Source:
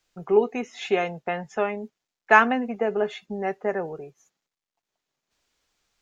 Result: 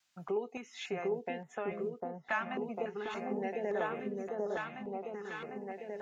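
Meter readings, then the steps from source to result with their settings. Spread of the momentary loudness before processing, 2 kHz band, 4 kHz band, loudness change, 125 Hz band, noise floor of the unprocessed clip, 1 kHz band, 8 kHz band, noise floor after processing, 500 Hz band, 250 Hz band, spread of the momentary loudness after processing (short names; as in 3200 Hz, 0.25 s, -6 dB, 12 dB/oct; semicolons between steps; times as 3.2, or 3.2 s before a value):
15 LU, -14.5 dB, -10.0 dB, -14.0 dB, -7.5 dB, under -85 dBFS, -14.0 dB, n/a, -63 dBFS, -10.0 dB, -10.0 dB, 7 LU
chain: HPF 110 Hz; low shelf 490 Hz -5.5 dB; compressor 3:1, threshold -33 dBFS, peak gain reduction 16.5 dB; vibrato 0.65 Hz 11 cents; random-step tremolo; on a send: repeats that get brighter 0.75 s, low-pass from 750 Hz, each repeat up 1 oct, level 0 dB; on the sum: stepped notch 3.5 Hz 430–4900 Hz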